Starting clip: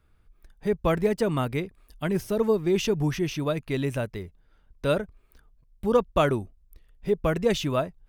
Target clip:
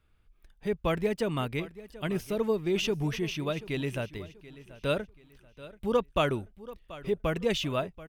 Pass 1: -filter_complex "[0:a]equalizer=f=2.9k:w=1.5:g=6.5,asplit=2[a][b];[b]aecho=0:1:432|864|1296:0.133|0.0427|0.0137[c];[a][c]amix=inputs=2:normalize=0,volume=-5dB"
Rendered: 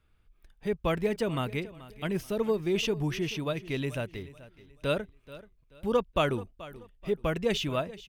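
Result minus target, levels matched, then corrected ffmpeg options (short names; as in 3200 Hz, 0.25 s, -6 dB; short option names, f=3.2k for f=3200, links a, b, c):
echo 0.302 s early
-filter_complex "[0:a]equalizer=f=2.9k:w=1.5:g=6.5,asplit=2[a][b];[b]aecho=0:1:734|1468|2202:0.133|0.0427|0.0137[c];[a][c]amix=inputs=2:normalize=0,volume=-5dB"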